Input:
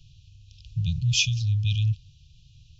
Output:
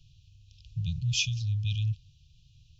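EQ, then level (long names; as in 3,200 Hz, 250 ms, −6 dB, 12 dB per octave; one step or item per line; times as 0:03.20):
dynamic equaliser 410 Hz, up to +3 dB, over −49 dBFS, Q 1.4
−5.5 dB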